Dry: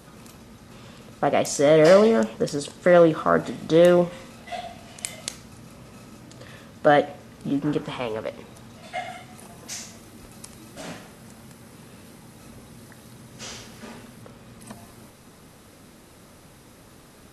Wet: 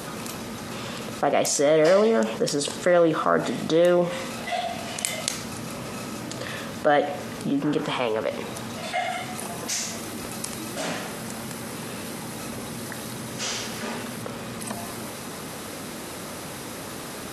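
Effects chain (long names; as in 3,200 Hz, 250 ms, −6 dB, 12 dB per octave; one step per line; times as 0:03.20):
high-pass filter 230 Hz 6 dB per octave
envelope flattener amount 50%
level −4 dB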